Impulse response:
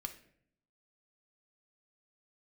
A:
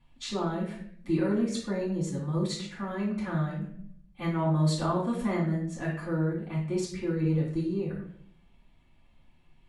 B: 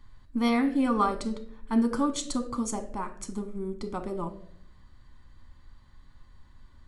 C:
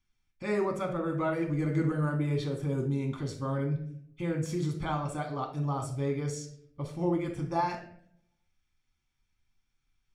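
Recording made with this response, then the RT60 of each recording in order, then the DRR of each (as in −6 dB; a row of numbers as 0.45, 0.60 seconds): B; 0.65, 0.65, 0.65 seconds; −8.0, 6.0, 1.0 decibels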